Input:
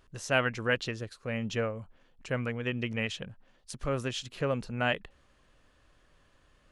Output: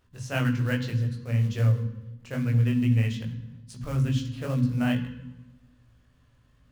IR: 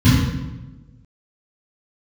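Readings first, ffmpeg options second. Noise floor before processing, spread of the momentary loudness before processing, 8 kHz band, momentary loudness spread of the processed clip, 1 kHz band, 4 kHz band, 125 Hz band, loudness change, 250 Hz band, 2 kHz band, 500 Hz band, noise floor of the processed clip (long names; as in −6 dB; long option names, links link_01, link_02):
−66 dBFS, 11 LU, can't be measured, 16 LU, −4.0 dB, −3.5 dB, +13.5 dB, +5.5 dB, +8.5 dB, −4.0 dB, −4.5 dB, −62 dBFS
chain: -filter_complex "[0:a]acrusher=bits=4:mode=log:mix=0:aa=0.000001,flanger=delay=16.5:depth=4.6:speed=2.4,asplit=2[link_01][link_02];[1:a]atrim=start_sample=2205,highshelf=frequency=3400:gain=10,adelay=13[link_03];[link_02][link_03]afir=irnorm=-1:irlink=0,volume=-31dB[link_04];[link_01][link_04]amix=inputs=2:normalize=0,volume=-1.5dB"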